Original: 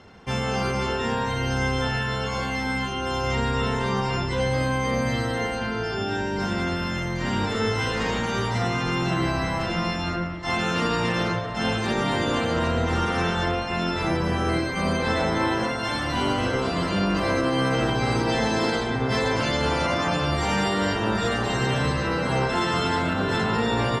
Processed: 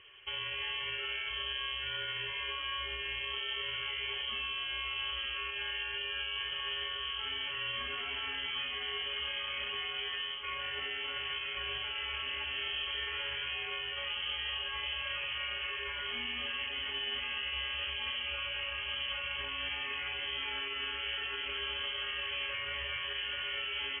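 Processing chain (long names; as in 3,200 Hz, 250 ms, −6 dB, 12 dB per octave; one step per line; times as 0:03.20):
brickwall limiter −21.5 dBFS, peak gain reduction 8 dB
on a send: delay with a high-pass on its return 921 ms, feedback 76%, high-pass 2,300 Hz, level −9 dB
on the sum: voice inversion scrambler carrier 3,200 Hz
level −8 dB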